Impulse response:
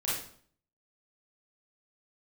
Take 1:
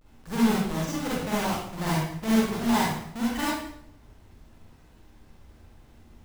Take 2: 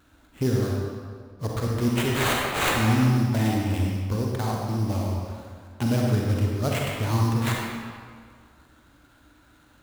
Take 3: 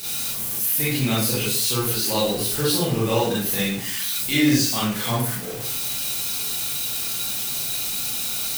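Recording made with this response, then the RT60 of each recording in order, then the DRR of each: 3; 0.70, 1.9, 0.55 s; -8.0, -2.0, -8.5 dB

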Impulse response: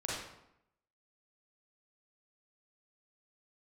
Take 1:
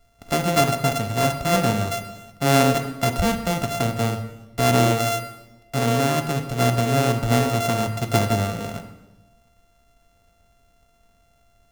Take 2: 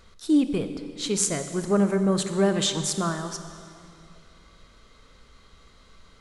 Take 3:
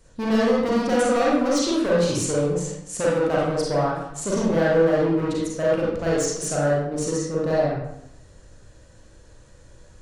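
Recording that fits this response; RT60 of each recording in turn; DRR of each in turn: 3; 1.1, 2.6, 0.80 s; 6.5, 8.0, -6.0 dB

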